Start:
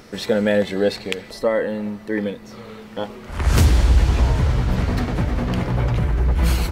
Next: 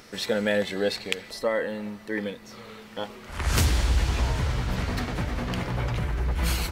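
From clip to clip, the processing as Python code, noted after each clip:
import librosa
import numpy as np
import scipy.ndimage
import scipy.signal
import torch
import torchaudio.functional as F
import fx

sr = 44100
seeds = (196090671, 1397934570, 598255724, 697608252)

y = fx.tilt_shelf(x, sr, db=-4.0, hz=970.0)
y = y * 10.0 ** (-4.5 / 20.0)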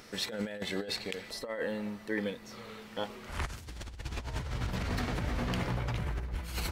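y = fx.over_compress(x, sr, threshold_db=-28.0, ratio=-0.5)
y = y * 10.0 ** (-6.0 / 20.0)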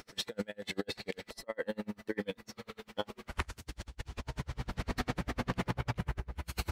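y = x * 10.0 ** (-36 * (0.5 - 0.5 * np.cos(2.0 * np.pi * 10.0 * np.arange(len(x)) / sr)) / 20.0)
y = y * 10.0 ** (4.0 / 20.0)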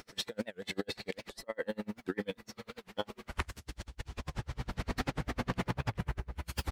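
y = fx.record_warp(x, sr, rpm=78.0, depth_cents=250.0)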